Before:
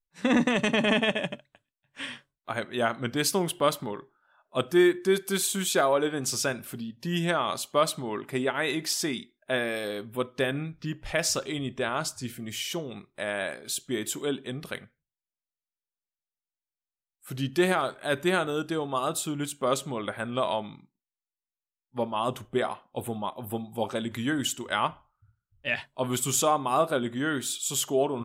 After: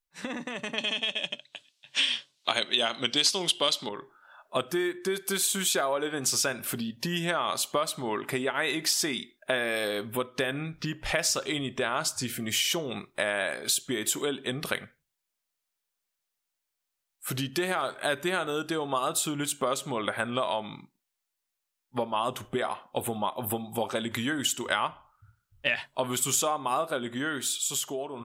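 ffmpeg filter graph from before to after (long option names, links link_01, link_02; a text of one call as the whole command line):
ffmpeg -i in.wav -filter_complex "[0:a]asettb=1/sr,asplit=3[link_01][link_02][link_03];[link_01]atrim=end=0.784[link_04];[link_02]atrim=start=0.78:end=3.89,asetpts=PTS-STARTPTS,afade=type=in:duration=0.004:curve=qsin,afade=type=out:start_time=3.106:duration=0.004:curve=qsin,highshelf=frequency=2400:width_type=q:width=1.5:gain=12.5,acontrast=55,highpass=170,lowpass=6000[link_05];[link_03]atrim=start=3.886[link_06];[link_04][link_05]acrossfade=duration=0.004:curve1=hsin:curve2=qsin[link_07];[link_07][link_06]acrossfade=duration=0.004:curve1=qsin:curve2=hsin,acompressor=threshold=-35dB:ratio=6,lowshelf=frequency=390:gain=-8,dynaudnorm=framelen=470:gausssize=7:maxgain=6.5dB,volume=5dB" out.wav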